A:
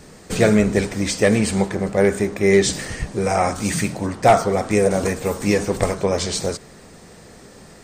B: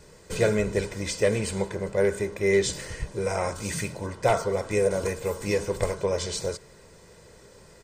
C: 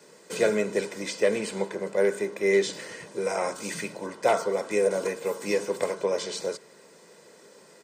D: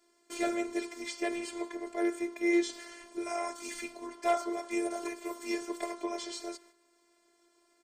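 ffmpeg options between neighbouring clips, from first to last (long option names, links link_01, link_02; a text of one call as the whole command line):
ffmpeg -i in.wav -af "aecho=1:1:2:0.56,volume=-8.5dB" out.wav
ffmpeg -i in.wav -filter_complex "[0:a]highpass=frequency=200:width=0.5412,highpass=frequency=200:width=1.3066,acrossover=split=260|4900[link_01][link_02][link_03];[link_03]alimiter=level_in=6.5dB:limit=-24dB:level=0:latency=1:release=434,volume=-6.5dB[link_04];[link_01][link_02][link_04]amix=inputs=3:normalize=0" out.wav
ffmpeg -i in.wav -af "volume=13dB,asoftclip=hard,volume=-13dB,afftfilt=real='hypot(re,im)*cos(PI*b)':imag='0':win_size=512:overlap=0.75,agate=range=-9dB:threshold=-53dB:ratio=16:detection=peak,volume=-3dB" out.wav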